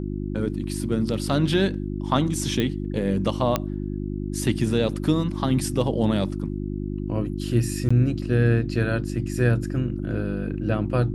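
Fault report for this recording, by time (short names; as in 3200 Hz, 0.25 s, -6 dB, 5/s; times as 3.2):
hum 50 Hz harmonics 7 -29 dBFS
2.6 pop -12 dBFS
3.56 pop -7 dBFS
7.89–7.91 gap 15 ms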